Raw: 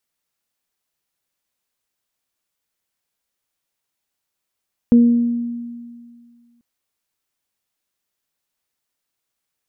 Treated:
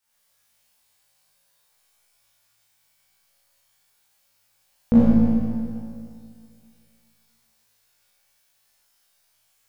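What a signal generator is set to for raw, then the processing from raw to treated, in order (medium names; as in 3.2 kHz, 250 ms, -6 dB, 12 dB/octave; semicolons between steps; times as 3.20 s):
additive tone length 1.69 s, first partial 237 Hz, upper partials -14.5 dB, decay 2.04 s, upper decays 0.80 s, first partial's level -6 dB
peaking EQ 290 Hz -12 dB 0.94 oct; flutter echo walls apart 3.1 m, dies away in 0.5 s; Schroeder reverb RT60 2.3 s, combs from 27 ms, DRR -9 dB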